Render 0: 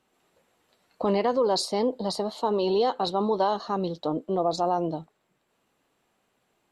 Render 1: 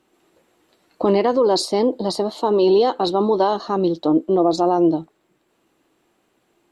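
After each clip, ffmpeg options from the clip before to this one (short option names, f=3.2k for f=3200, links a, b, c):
-af "equalizer=f=330:w=3.5:g=11,volume=5dB"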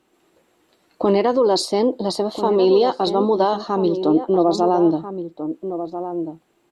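-filter_complex "[0:a]asplit=2[a][b];[b]adelay=1341,volume=-9dB,highshelf=f=4k:g=-30.2[c];[a][c]amix=inputs=2:normalize=0"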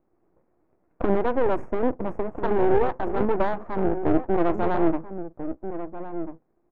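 -af "aeval=exprs='max(val(0),0)':c=same,asuperstop=centerf=4000:order=8:qfactor=1.1,adynamicsmooth=sensitivity=0.5:basefreq=930"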